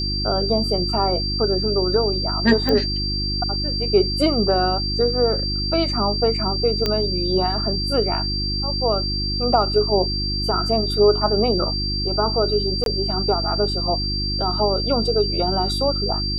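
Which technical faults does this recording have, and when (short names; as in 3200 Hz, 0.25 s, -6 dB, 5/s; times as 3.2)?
hum 50 Hz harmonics 7 -26 dBFS
tone 4700 Hz -24 dBFS
2.69 pop -9 dBFS
6.86 pop -7 dBFS
12.84–12.86 gap 22 ms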